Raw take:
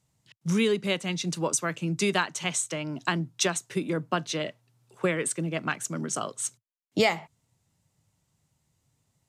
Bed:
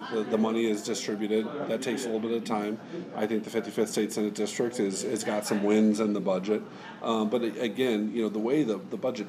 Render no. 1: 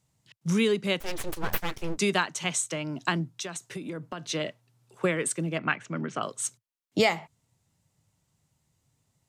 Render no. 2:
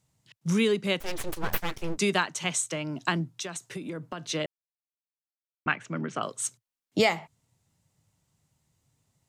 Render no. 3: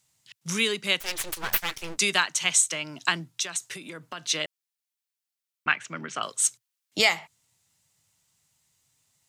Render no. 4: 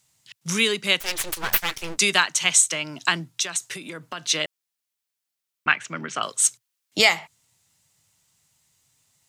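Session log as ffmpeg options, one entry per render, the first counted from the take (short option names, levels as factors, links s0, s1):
-filter_complex "[0:a]asettb=1/sr,asplit=3[s0][s1][s2];[s0]atrim=end=1.004[s3];[s1]atrim=start=1:end=1.98,asetpts=PTS-STARTPTS,afade=t=in:d=0.004:c=qsin,afade=t=out:st=0.976:d=0.004:c=qsin,aeval=exprs='abs(val(0))':c=same[s4];[s2]atrim=start=1.976[s5];[s3][s4]acrossfade=d=0.004:c1=hsin:c2=qsin[s6];[s6][s5]acrossfade=d=0.004:c1=qsin:c2=hsin,asettb=1/sr,asplit=3[s7][s8][s9];[s7]atrim=end=3.364[s10];[s8]atrim=start=3.36:end=4.29,asetpts=PTS-STARTPTS,afade=t=in:d=0.004:c=qsin,afade=t=out:st=0.926:d=0.004:c=qsin,acompressor=threshold=0.0251:ratio=6:attack=3.2:release=140:knee=1:detection=peak[s11];[s9]atrim=start=4.286[s12];[s10][s11]acrossfade=d=0.004:c1=hsin:c2=qsin[s13];[s13][s12]acrossfade=d=0.004:c1=qsin:c2=hsin,asettb=1/sr,asplit=3[s14][s15][s16];[s14]atrim=end=5.584[s17];[s15]atrim=start=5.58:end=6.23,asetpts=PTS-STARTPTS,afade=t=in:d=0.004:c=qsin,afade=t=out:st=0.646:d=0.004:c=qsin,lowpass=f=2400:t=q:w=1.7[s18];[s16]atrim=start=6.226[s19];[s17][s18]acrossfade=d=0.004:c1=hsin:c2=qsin[s20];[s20][s19]acrossfade=d=0.004:c1=qsin:c2=hsin"
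-filter_complex "[0:a]asplit=3[s0][s1][s2];[s0]atrim=end=4.46,asetpts=PTS-STARTPTS,afade=t=out:st=4.456:d=0.004:c=hsin[s3];[s1]atrim=start=4.46:end=5.66,asetpts=PTS-STARTPTS,volume=0[s4];[s2]atrim=start=5.66,asetpts=PTS-STARTPTS,afade=t=in:d=0.004:c=hsin[s5];[s3][s4][s5]concat=n=3:v=0:a=1"
-af "tiltshelf=f=970:g=-8.5"
-af "volume=1.58,alimiter=limit=0.891:level=0:latency=1"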